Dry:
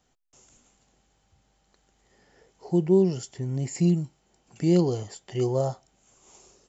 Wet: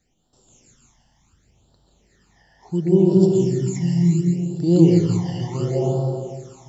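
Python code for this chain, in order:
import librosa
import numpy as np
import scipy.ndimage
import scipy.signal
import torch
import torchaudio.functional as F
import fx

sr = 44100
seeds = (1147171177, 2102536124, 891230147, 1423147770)

y = fx.rev_plate(x, sr, seeds[0], rt60_s=2.6, hf_ratio=0.8, predelay_ms=115, drr_db=-3.5)
y = fx.phaser_stages(y, sr, stages=12, low_hz=400.0, high_hz=2200.0, hz=0.7, feedback_pct=25)
y = y * librosa.db_to_amplitude(2.0)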